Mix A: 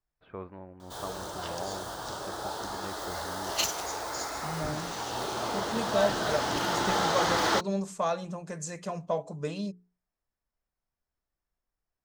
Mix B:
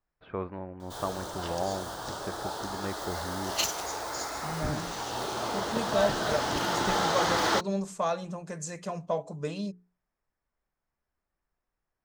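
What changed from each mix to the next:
first voice +6.5 dB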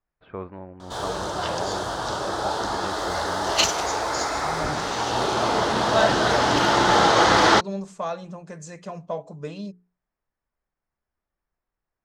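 background +10.5 dB; master: add air absorption 59 m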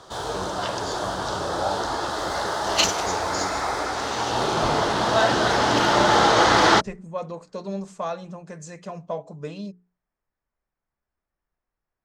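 background: entry -0.80 s

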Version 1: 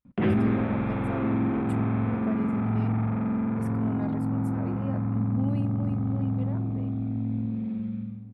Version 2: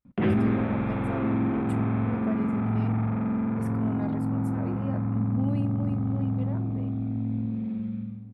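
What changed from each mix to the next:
speech: send +7.5 dB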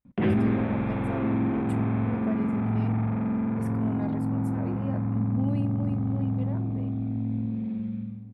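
master: add bell 1300 Hz -4.5 dB 0.23 oct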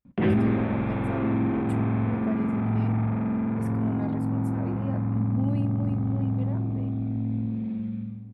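background: send +9.5 dB

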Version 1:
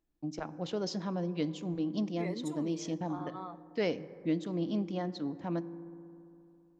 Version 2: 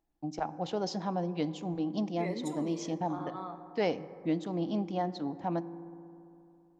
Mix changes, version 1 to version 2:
first voice: add bell 790 Hz +11.5 dB 0.49 oct; second voice: send +10.0 dB

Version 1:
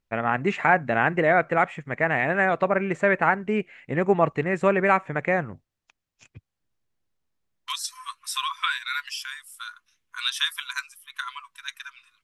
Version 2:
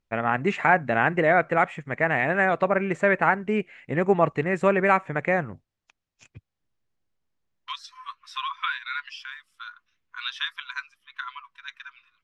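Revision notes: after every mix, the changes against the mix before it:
second voice: add air absorption 240 m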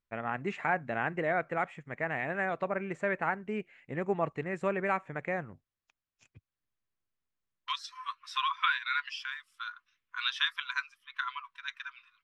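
first voice -10.5 dB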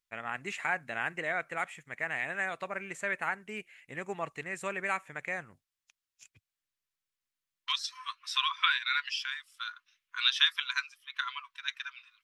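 first voice: remove LPF 6000 Hz; master: add tilt shelf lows -9.5 dB, about 1500 Hz

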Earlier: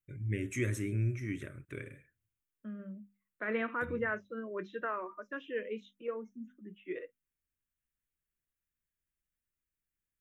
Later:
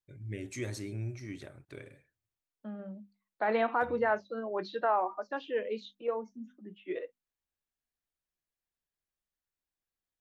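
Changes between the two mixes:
first voice -6.0 dB; master: remove fixed phaser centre 1900 Hz, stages 4

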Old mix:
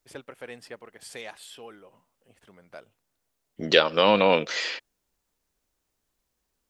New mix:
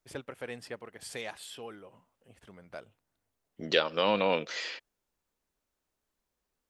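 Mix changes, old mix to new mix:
first voice: add low shelf 130 Hz +8.5 dB; second voice -7.5 dB

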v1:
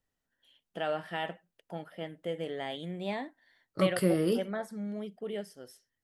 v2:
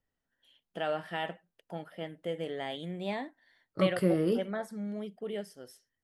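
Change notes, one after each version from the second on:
second voice: add high shelf 3100 Hz -9 dB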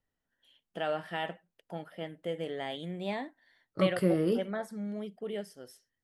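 none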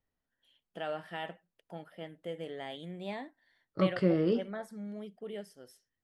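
first voice -4.5 dB; second voice: add LPF 5900 Hz 24 dB/oct

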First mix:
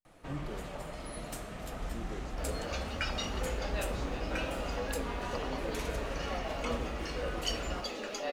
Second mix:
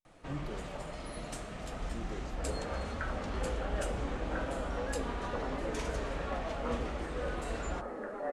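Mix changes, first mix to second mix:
first sound: add LPF 9700 Hz 24 dB/oct; second sound: add steep low-pass 1800 Hz 48 dB/oct

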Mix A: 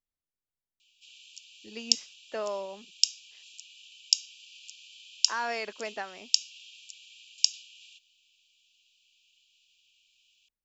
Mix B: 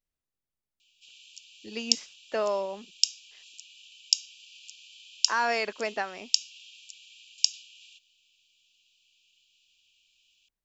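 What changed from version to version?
speech +5.5 dB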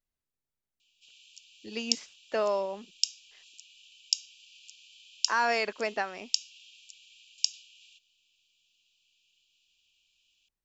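background -4.0 dB

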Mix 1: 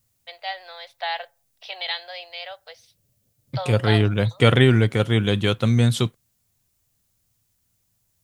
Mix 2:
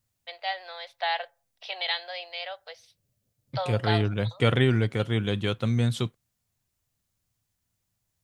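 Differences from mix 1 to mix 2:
second voice -6.5 dB; master: add high shelf 7300 Hz -5.5 dB

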